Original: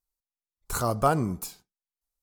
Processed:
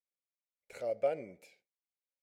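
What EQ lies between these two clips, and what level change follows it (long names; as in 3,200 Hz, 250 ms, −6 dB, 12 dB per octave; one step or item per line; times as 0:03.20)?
pair of resonant band-passes 1,100 Hz, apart 2 octaves
0.0 dB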